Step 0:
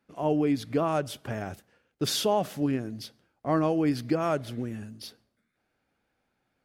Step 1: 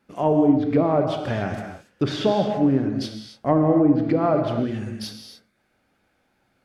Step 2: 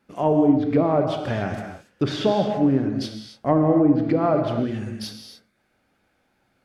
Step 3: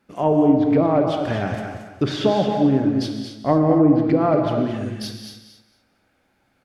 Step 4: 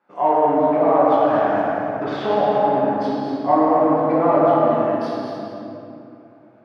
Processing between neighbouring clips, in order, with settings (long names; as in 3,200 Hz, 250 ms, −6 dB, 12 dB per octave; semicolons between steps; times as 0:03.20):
treble cut that deepens with the level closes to 640 Hz, closed at −21 dBFS; tape wow and flutter 25 cents; reverb whose tail is shaped and stops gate 310 ms flat, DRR 3.5 dB; level +7.5 dB
no processing that can be heard
repeating echo 225 ms, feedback 21%, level −8 dB; level +1.5 dB
in parallel at −6 dB: hard clipping −20.5 dBFS, distortion −6 dB; on the sum: resonant band-pass 930 Hz, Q 1.5; rectangular room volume 120 cubic metres, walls hard, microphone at 0.91 metres; level −1 dB